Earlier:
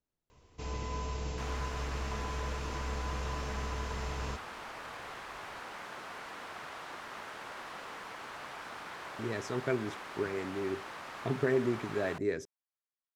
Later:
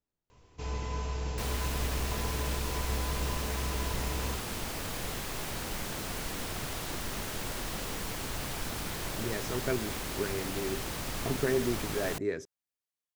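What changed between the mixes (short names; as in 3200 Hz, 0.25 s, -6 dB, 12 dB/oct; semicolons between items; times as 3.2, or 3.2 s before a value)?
first sound: send on; second sound: remove band-pass 1200 Hz, Q 1.1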